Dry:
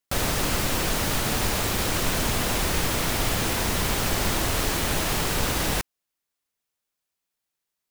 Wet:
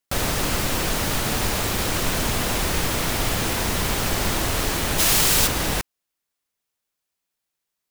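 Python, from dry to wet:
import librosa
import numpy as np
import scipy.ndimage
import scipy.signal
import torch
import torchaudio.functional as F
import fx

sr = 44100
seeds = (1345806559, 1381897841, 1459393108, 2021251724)

y = fx.high_shelf(x, sr, hz=2700.0, db=11.0, at=(4.98, 5.46), fade=0.02)
y = y * 10.0 ** (1.5 / 20.0)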